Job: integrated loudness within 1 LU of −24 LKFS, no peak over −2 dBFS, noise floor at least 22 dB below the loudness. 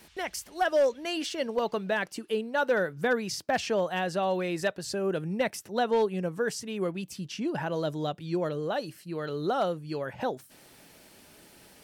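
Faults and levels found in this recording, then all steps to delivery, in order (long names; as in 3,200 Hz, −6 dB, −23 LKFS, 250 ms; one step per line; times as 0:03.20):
share of clipped samples 0.3%; peaks flattened at −18.5 dBFS; integrated loudness −30.0 LKFS; sample peak −18.5 dBFS; target loudness −24.0 LKFS
→ clipped peaks rebuilt −18.5 dBFS
level +6 dB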